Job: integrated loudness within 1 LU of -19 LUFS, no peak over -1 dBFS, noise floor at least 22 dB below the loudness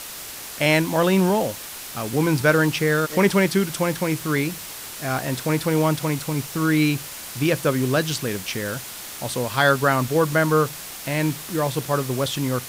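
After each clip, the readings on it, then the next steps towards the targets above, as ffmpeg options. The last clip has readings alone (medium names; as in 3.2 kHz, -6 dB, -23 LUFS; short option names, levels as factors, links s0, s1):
noise floor -36 dBFS; noise floor target -44 dBFS; loudness -22.0 LUFS; peak level -4.5 dBFS; loudness target -19.0 LUFS
-> -af "afftdn=nr=8:nf=-36"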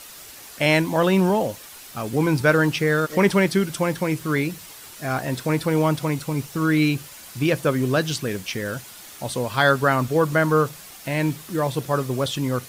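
noise floor -42 dBFS; noise floor target -44 dBFS
-> -af "afftdn=nr=6:nf=-42"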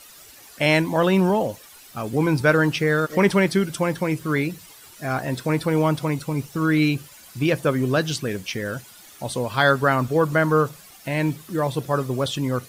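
noise floor -47 dBFS; loudness -22.0 LUFS; peak level -4.5 dBFS; loudness target -19.0 LUFS
-> -af "volume=1.41"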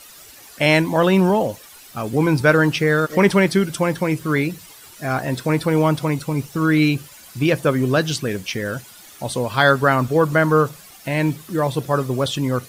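loudness -19.0 LUFS; peak level -1.5 dBFS; noise floor -44 dBFS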